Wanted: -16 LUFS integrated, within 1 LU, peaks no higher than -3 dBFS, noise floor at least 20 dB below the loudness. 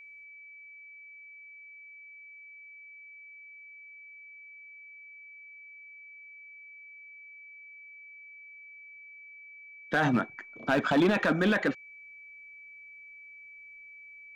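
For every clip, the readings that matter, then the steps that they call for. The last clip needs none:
clipped samples 0.4%; clipping level -19.0 dBFS; steady tone 2.3 kHz; tone level -47 dBFS; loudness -27.5 LUFS; peak level -19.0 dBFS; loudness target -16.0 LUFS
-> clip repair -19 dBFS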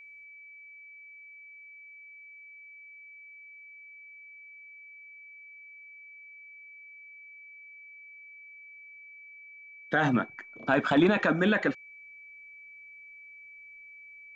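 clipped samples 0.0%; steady tone 2.3 kHz; tone level -47 dBFS
-> band-stop 2.3 kHz, Q 30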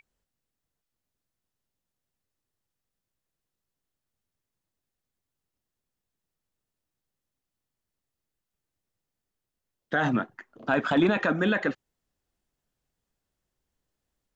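steady tone not found; loudness -26.0 LUFS; peak level -10.0 dBFS; loudness target -16.0 LUFS
-> trim +10 dB; peak limiter -3 dBFS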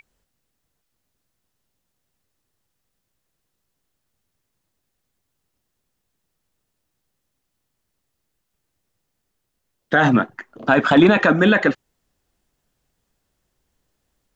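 loudness -16.0 LUFS; peak level -3.0 dBFS; noise floor -77 dBFS

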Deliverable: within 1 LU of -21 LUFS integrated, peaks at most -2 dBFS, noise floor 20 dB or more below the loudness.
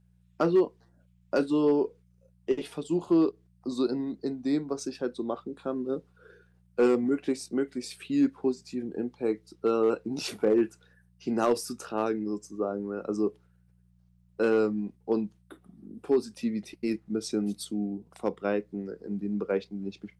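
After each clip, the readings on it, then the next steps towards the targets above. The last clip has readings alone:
clipped samples 0.2%; clipping level -16.0 dBFS; hum 60 Hz; highest harmonic 180 Hz; hum level -59 dBFS; loudness -29.5 LUFS; peak level -16.0 dBFS; loudness target -21.0 LUFS
-> clip repair -16 dBFS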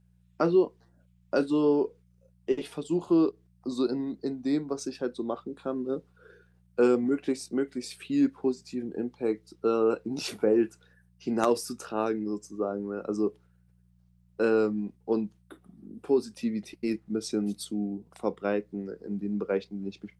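clipped samples 0.0%; hum 60 Hz; highest harmonic 180 Hz; hum level -59 dBFS
-> de-hum 60 Hz, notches 3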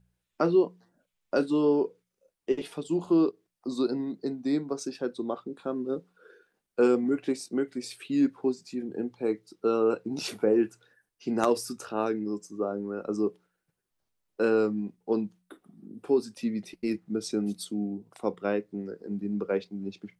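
hum not found; loudness -29.5 LUFS; peak level -8.0 dBFS; loudness target -21.0 LUFS
-> trim +8.5 dB; peak limiter -2 dBFS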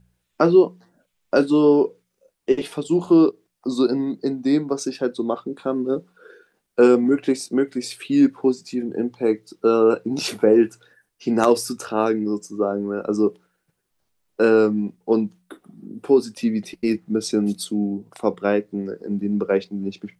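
loudness -21.0 LUFS; peak level -2.0 dBFS; noise floor -75 dBFS

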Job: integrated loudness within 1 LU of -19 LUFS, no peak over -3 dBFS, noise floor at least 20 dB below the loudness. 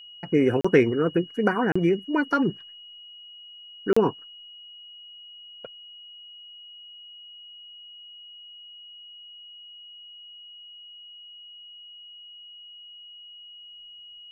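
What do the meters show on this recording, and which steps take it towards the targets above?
dropouts 3; longest dropout 35 ms; steady tone 2.9 kHz; tone level -43 dBFS; loudness -23.5 LUFS; peak level -6.5 dBFS; loudness target -19.0 LUFS
-> interpolate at 0.61/1.72/3.93 s, 35 ms; band-stop 2.9 kHz, Q 30; trim +4.5 dB; peak limiter -3 dBFS

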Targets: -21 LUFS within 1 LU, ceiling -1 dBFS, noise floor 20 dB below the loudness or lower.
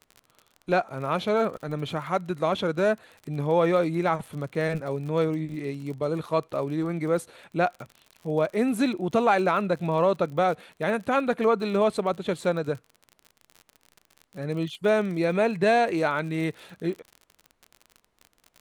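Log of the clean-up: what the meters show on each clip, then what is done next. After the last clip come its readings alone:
tick rate 41 per s; loudness -26.0 LUFS; peak level -10.0 dBFS; loudness target -21.0 LUFS
-> de-click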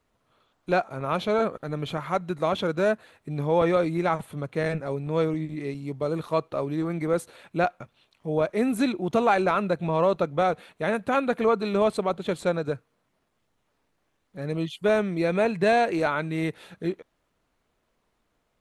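tick rate 0 per s; loudness -26.0 LUFS; peak level -10.0 dBFS; loudness target -21.0 LUFS
-> trim +5 dB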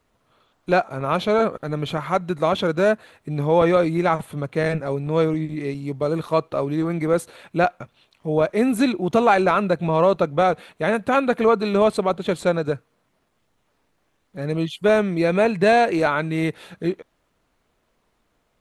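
loudness -21.0 LUFS; peak level -5.0 dBFS; noise floor -69 dBFS

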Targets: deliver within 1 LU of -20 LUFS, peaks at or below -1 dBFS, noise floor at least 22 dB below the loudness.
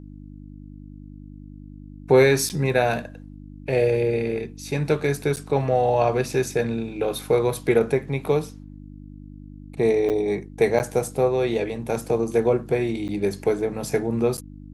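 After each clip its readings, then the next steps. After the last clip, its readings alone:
dropouts 6; longest dropout 8.9 ms; hum 50 Hz; highest harmonic 300 Hz; hum level -39 dBFS; loudness -23.0 LUFS; peak level -5.5 dBFS; loudness target -20.0 LUFS
-> interpolate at 2.49/5.36/10.09/10.79/13.08/14.37 s, 8.9 ms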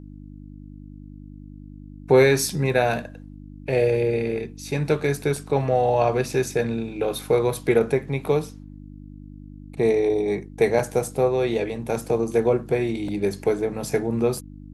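dropouts 0; hum 50 Hz; highest harmonic 300 Hz; hum level -39 dBFS
-> de-hum 50 Hz, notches 6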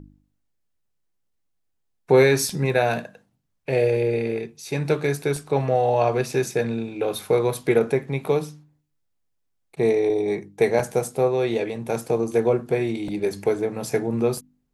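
hum not found; loudness -23.0 LUFS; peak level -5.5 dBFS; loudness target -20.0 LUFS
-> trim +3 dB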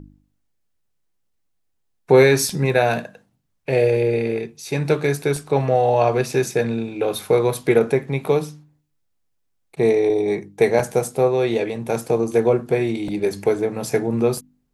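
loudness -20.0 LUFS; peak level -2.5 dBFS; noise floor -70 dBFS

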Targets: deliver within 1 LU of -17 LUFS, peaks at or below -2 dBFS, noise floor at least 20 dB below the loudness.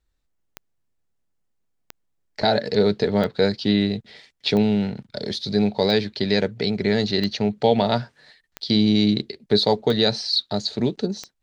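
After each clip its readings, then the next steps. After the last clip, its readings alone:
clicks found 9; loudness -21.5 LUFS; peak level -5.0 dBFS; loudness target -17.0 LUFS
-> de-click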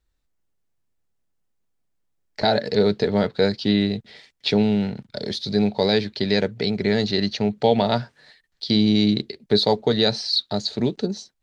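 clicks found 0; loudness -21.5 LUFS; peak level -5.0 dBFS; loudness target -17.0 LUFS
-> trim +4.5 dB; peak limiter -2 dBFS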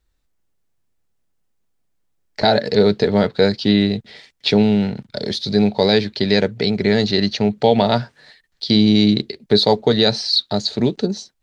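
loudness -17.0 LUFS; peak level -2.0 dBFS; noise floor -67 dBFS

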